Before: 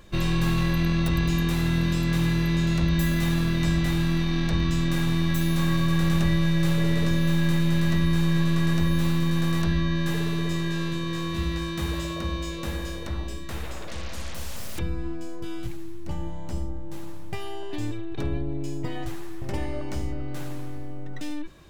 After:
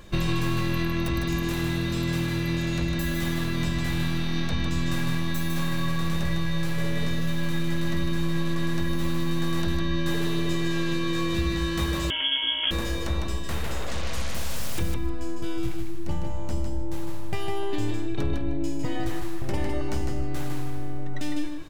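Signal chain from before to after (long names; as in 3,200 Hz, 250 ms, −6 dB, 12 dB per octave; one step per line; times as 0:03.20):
downward compressor, threshold −25 dBFS, peak gain reduction 8 dB
repeating echo 154 ms, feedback 17%, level −5 dB
0:12.10–0:12.71: voice inversion scrambler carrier 3,300 Hz
level +3.5 dB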